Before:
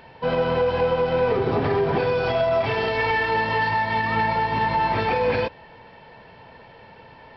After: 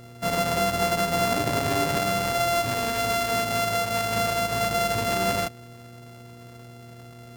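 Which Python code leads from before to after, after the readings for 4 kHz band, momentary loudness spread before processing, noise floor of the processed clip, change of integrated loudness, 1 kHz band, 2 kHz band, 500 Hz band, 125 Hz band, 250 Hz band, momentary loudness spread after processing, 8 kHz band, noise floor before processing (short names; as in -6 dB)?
+4.5 dB, 2 LU, -45 dBFS, -2.5 dB, -3.0 dB, -4.0 dB, -4.5 dB, -2.5 dB, -1.0 dB, 2 LU, n/a, -47 dBFS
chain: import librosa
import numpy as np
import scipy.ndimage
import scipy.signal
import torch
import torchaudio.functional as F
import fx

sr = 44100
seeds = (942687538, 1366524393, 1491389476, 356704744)

y = np.r_[np.sort(x[:len(x) // 64 * 64].reshape(-1, 64), axis=1).ravel(), x[len(x) // 64 * 64:]]
y = fx.dmg_buzz(y, sr, base_hz=120.0, harmonics=4, level_db=-43.0, tilt_db=-6, odd_only=False)
y = y * 10.0 ** (-3.0 / 20.0)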